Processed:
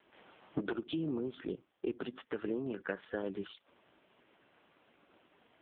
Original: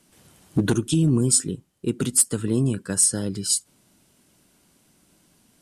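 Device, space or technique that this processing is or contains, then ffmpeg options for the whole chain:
voicemail: -af "highpass=450,lowpass=2700,acompressor=threshold=-38dB:ratio=8,volume=6.5dB" -ar 8000 -c:a libopencore_amrnb -b:a 5150

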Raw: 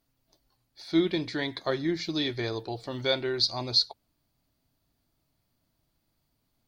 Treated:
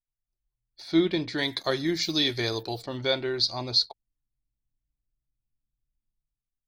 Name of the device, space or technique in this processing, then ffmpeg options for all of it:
voice memo with heavy noise removal: -filter_complex "[0:a]asplit=3[link_01][link_02][link_03];[link_01]afade=type=out:start_time=1.37:duration=0.02[link_04];[link_02]aemphasis=mode=production:type=75kf,afade=type=in:start_time=1.37:duration=0.02,afade=type=out:start_time=2.81:duration=0.02[link_05];[link_03]afade=type=in:start_time=2.81:duration=0.02[link_06];[link_04][link_05][link_06]amix=inputs=3:normalize=0,anlmdn=0.00398,dynaudnorm=framelen=110:gausssize=9:maxgain=11.5dB,volume=-8.5dB"

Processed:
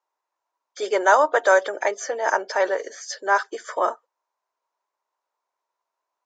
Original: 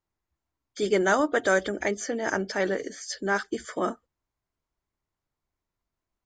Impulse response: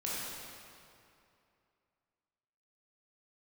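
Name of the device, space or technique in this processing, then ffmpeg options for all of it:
phone speaker on a table: -af "highpass=frequency=470:width=0.5412,highpass=frequency=470:width=1.3066,equalizer=frequency=570:width_type=q:width=4:gain=3,equalizer=frequency=960:width_type=q:width=4:gain=10,equalizer=frequency=2100:width_type=q:width=4:gain=-4,equalizer=frequency=3200:width_type=q:width=4:gain=-5,equalizer=frequency=4600:width_type=q:width=4:gain=-4,lowpass=frequency=6800:width=0.5412,lowpass=frequency=6800:width=1.3066,volume=5dB"

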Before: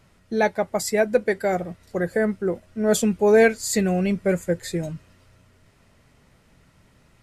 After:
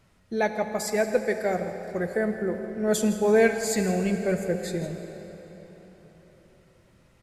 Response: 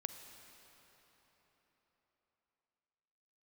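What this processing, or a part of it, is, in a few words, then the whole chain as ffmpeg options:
cave: -filter_complex "[0:a]aecho=1:1:163:0.178[link_01];[1:a]atrim=start_sample=2205[link_02];[link_01][link_02]afir=irnorm=-1:irlink=0,volume=-2dB"

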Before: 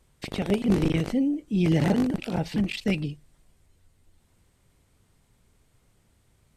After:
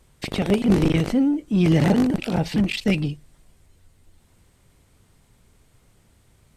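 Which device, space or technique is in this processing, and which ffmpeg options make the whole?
parallel distortion: -filter_complex "[0:a]asplit=2[link_01][link_02];[link_02]asoftclip=type=hard:threshold=-28.5dB,volume=-8.5dB[link_03];[link_01][link_03]amix=inputs=2:normalize=0,volume=3.5dB"

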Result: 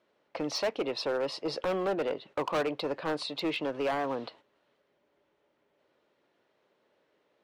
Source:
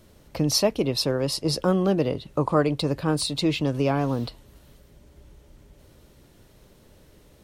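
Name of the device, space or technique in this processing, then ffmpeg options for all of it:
walkie-talkie: -af "highpass=470,lowpass=2700,asoftclip=type=hard:threshold=-25.5dB,agate=range=-10dB:threshold=-53dB:ratio=16:detection=peak"

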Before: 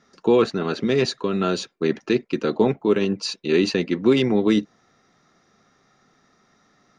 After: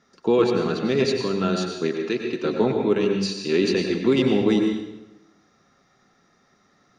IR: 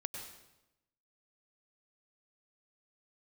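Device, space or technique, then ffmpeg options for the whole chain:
bathroom: -filter_complex "[1:a]atrim=start_sample=2205[link_01];[0:a][link_01]afir=irnorm=-1:irlink=0,asettb=1/sr,asplit=3[link_02][link_03][link_04];[link_02]atrim=end=1.894[link_05];[link_03]atrim=start=1.89:end=2.44,asetpts=PTS-STARTPTS,afade=type=in:duration=0.004:curve=qsin,afade=type=out:start_time=0.546:duration=0.004:curve=qsin,lowshelf=frequency=230:gain=-9[link_06];[link_04]atrim=start=2.436[link_07];[link_05][link_06]acrossfade=duration=0.004:curve1=hsin:curve2=qsin[link_08];[link_08][link_07]acrossfade=duration=0.004:curve1=qsin:curve2=hsin"

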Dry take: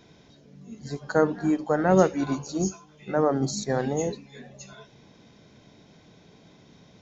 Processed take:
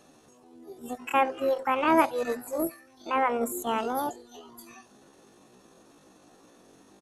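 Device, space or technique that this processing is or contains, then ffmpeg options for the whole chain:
chipmunk voice: -af "asetrate=76340,aresample=44100,atempo=0.577676,volume=-2.5dB"

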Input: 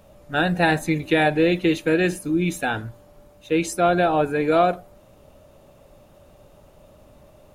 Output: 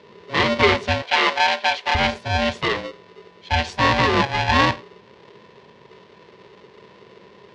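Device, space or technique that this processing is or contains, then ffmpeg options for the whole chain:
ring modulator pedal into a guitar cabinet: -filter_complex "[0:a]aeval=exprs='val(0)*sgn(sin(2*PI*410*n/s))':channel_layout=same,highpass=95,equalizer=frequency=160:width_type=q:width=4:gain=-6,equalizer=frequency=280:width_type=q:width=4:gain=-10,equalizer=frequency=410:width_type=q:width=4:gain=5,equalizer=frequency=710:width_type=q:width=4:gain=-7,equalizer=frequency=1300:width_type=q:width=4:gain=-8,lowpass=frequency=4600:width=0.5412,lowpass=frequency=4600:width=1.3066,asettb=1/sr,asplit=3[link_01][link_02][link_03];[link_01]atrim=end=1.024[link_04];[link_02]atrim=start=1.02:end=1.95,asetpts=PTS-STARTPTS,afade=type=in:duration=0.004:curve=qsin,afade=type=out:start_time=0.926:duration=0.004:curve=qsin,highpass=490[link_05];[link_03]atrim=start=1.946[link_06];[link_04][link_05]acrossfade=duration=0.004:curve1=hsin:curve2=qsin[link_07];[link_07][link_06]acrossfade=duration=0.004:curve1=qsin:curve2=hsin,volume=4.5dB"

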